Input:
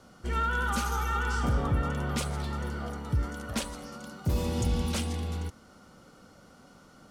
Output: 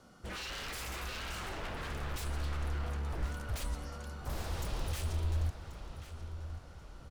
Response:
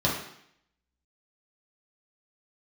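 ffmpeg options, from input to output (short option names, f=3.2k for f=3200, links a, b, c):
-filter_complex "[0:a]aeval=exprs='0.0237*(abs(mod(val(0)/0.0237+3,4)-2)-1)':c=same,asubboost=boost=7:cutoff=91,asplit=2[a][b];[b]adelay=1085,lowpass=f=4.7k:p=1,volume=-10.5dB,asplit=2[c][d];[d]adelay=1085,lowpass=f=4.7k:p=1,volume=0.49,asplit=2[e][f];[f]adelay=1085,lowpass=f=4.7k:p=1,volume=0.49,asplit=2[g][h];[h]adelay=1085,lowpass=f=4.7k:p=1,volume=0.49,asplit=2[i][j];[j]adelay=1085,lowpass=f=4.7k:p=1,volume=0.49[k];[c][e][g][i][k]amix=inputs=5:normalize=0[l];[a][l]amix=inputs=2:normalize=0,volume=-4.5dB"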